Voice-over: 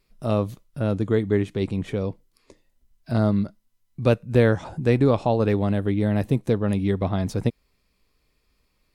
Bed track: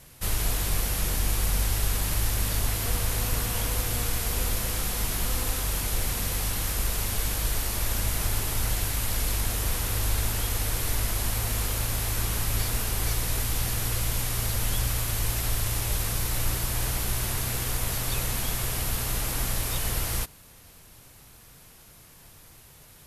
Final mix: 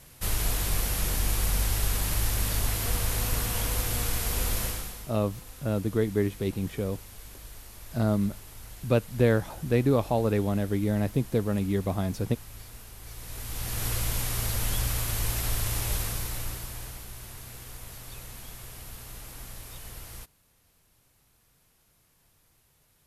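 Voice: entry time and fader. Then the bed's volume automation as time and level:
4.85 s, -4.5 dB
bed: 4.65 s -1 dB
5.12 s -18 dB
13.02 s -18 dB
13.86 s -1.5 dB
15.94 s -1.5 dB
17.09 s -14.5 dB

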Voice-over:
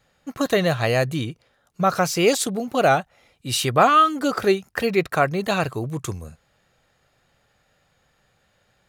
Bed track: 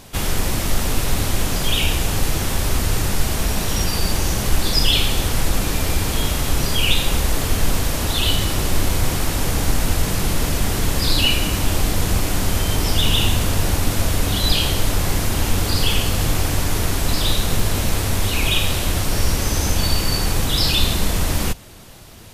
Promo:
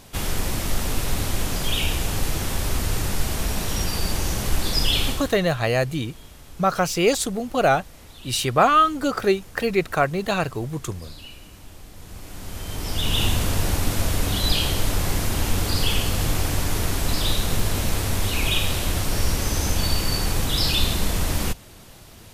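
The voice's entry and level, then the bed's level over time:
4.80 s, -1.0 dB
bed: 5.09 s -4.5 dB
5.45 s -24.5 dB
11.9 s -24.5 dB
13.23 s -3.5 dB

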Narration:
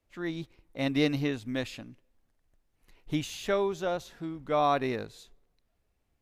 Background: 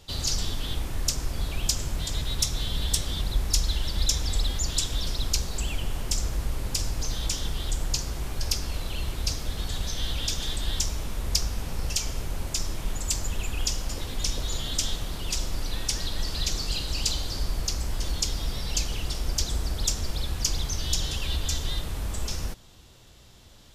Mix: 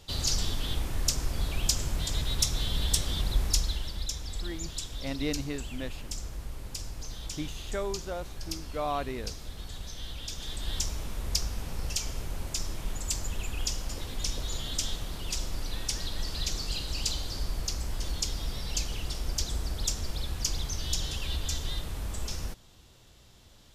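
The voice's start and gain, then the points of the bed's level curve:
4.25 s, -6.0 dB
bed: 3.46 s -1 dB
4.08 s -10 dB
10.26 s -10 dB
10.77 s -4 dB

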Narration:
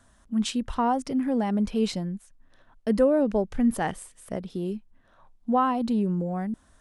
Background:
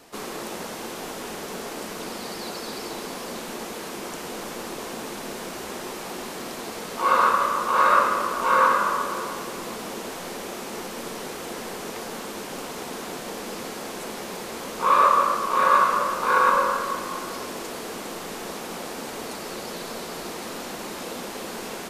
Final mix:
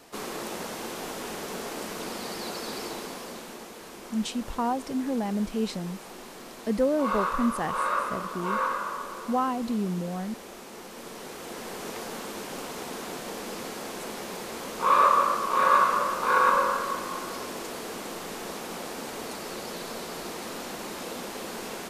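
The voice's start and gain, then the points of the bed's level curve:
3.80 s, -3.5 dB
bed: 2.83 s -1.5 dB
3.72 s -9.5 dB
10.77 s -9.5 dB
11.88 s -2.5 dB

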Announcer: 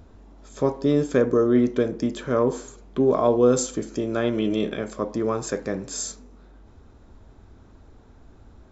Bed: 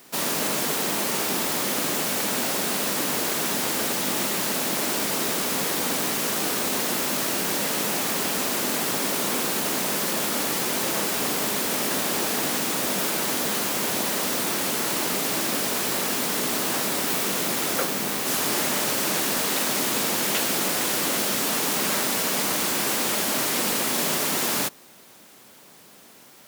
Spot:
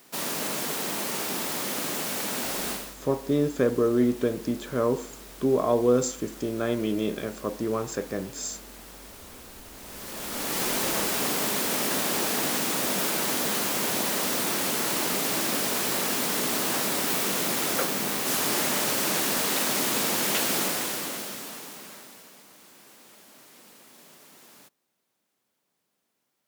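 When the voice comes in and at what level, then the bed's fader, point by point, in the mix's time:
2.45 s, -3.5 dB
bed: 2.71 s -5 dB
2.97 s -21 dB
9.72 s -21 dB
10.62 s -1.5 dB
20.6 s -1.5 dB
22.45 s -28 dB

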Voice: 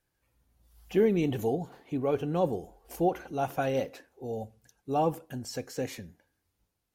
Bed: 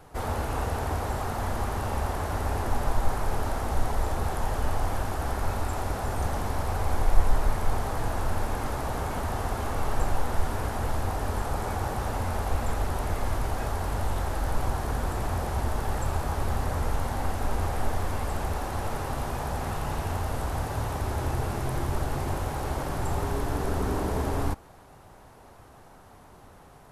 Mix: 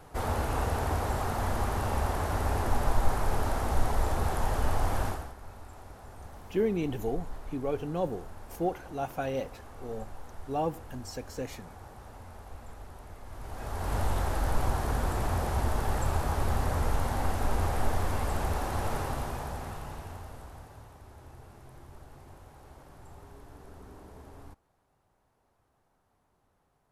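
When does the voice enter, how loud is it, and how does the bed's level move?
5.60 s, -3.5 dB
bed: 5.08 s -0.5 dB
5.35 s -18 dB
13.25 s -18 dB
13.95 s -0.5 dB
18.98 s -0.5 dB
20.97 s -21.5 dB

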